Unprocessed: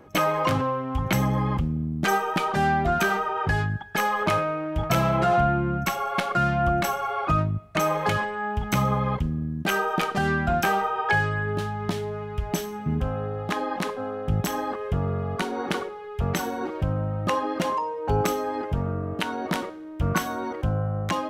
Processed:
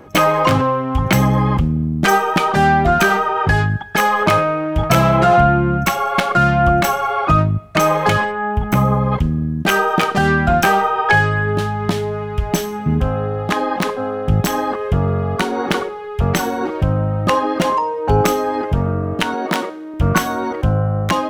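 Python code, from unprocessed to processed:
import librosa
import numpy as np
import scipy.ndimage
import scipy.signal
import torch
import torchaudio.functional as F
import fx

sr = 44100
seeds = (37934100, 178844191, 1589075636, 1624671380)

y = fx.tracing_dist(x, sr, depth_ms=0.054)
y = fx.peak_eq(y, sr, hz=fx.line((8.31, 8600.0), (9.11, 2800.0)), db=-11.5, octaves=2.2, at=(8.31, 9.11), fade=0.02)
y = fx.highpass(y, sr, hz=210.0, slope=12, at=(19.34, 19.94))
y = F.gain(torch.from_numpy(y), 9.0).numpy()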